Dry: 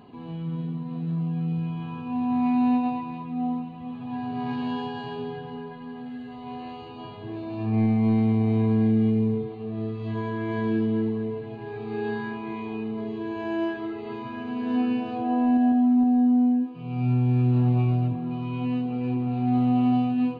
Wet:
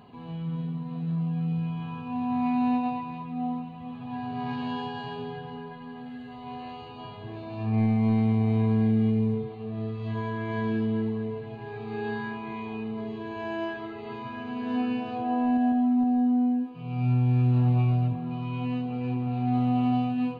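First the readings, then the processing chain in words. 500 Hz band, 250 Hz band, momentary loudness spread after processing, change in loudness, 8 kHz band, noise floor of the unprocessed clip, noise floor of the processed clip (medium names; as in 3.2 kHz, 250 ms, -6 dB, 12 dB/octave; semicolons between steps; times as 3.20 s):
-3.0 dB, -3.5 dB, 16 LU, -2.5 dB, no reading, -39 dBFS, -41 dBFS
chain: peaking EQ 320 Hz -8 dB 0.67 oct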